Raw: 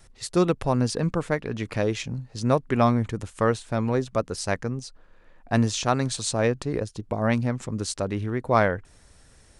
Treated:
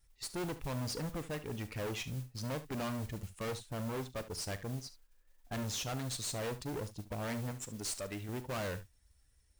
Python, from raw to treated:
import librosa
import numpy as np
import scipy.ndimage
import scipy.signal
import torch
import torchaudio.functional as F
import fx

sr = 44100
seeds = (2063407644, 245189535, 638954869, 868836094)

p1 = fx.bin_expand(x, sr, power=1.5)
p2 = fx.tilt_eq(p1, sr, slope=3.5, at=(7.51, 8.29))
p3 = fx.tube_stage(p2, sr, drive_db=37.0, bias=0.5)
p4 = fx.mod_noise(p3, sr, seeds[0], snr_db=17)
p5 = p4 + fx.room_early_taps(p4, sr, ms=(39, 71), db=(-16.5, -15.0), dry=0)
y = p5 * 10.0 ** (1.0 / 20.0)